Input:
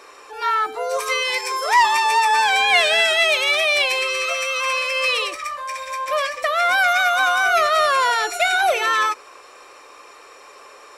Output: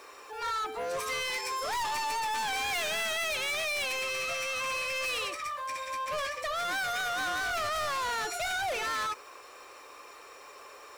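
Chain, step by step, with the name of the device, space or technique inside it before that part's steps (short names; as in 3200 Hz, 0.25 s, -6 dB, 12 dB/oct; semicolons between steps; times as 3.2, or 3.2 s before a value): open-reel tape (soft clip -24.5 dBFS, distortion -7 dB; bell 69 Hz +4 dB 1.08 oct; white noise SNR 33 dB); gain -5.5 dB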